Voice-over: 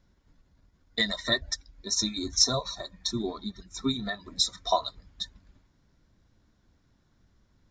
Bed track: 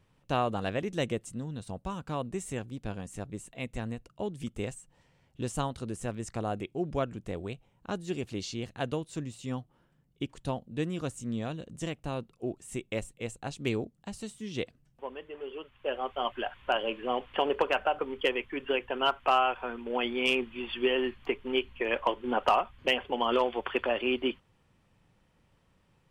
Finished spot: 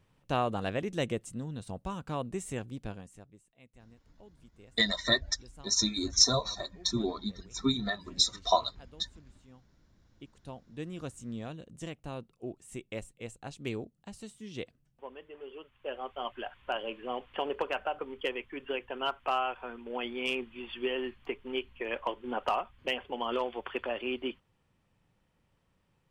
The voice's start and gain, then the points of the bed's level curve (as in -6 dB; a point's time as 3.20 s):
3.80 s, 0.0 dB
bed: 2.82 s -1 dB
3.45 s -21.5 dB
9.66 s -21.5 dB
11.03 s -5.5 dB